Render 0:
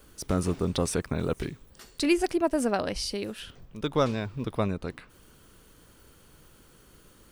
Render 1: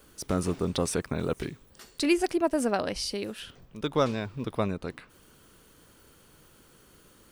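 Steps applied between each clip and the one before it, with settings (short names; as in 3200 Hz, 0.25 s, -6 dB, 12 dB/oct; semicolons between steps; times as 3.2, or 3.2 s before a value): low shelf 83 Hz -7.5 dB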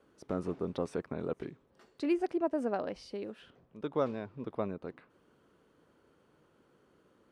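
band-pass 470 Hz, Q 0.51; gain -5 dB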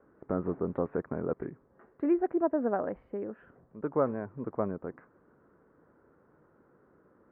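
steep low-pass 1800 Hz 36 dB/oct; gain +3.5 dB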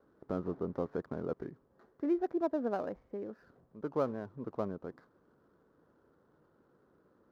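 median filter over 15 samples; gain -4.5 dB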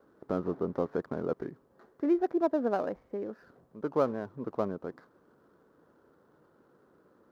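low shelf 120 Hz -8 dB; gain +5.5 dB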